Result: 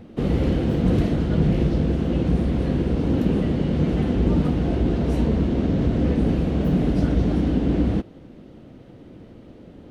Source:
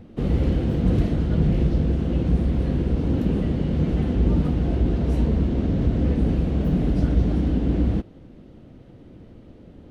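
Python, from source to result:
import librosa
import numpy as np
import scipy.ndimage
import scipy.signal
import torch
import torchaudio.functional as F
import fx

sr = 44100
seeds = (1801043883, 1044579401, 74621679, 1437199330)

y = fx.low_shelf(x, sr, hz=110.0, db=-8.5)
y = F.gain(torch.from_numpy(y), 4.0).numpy()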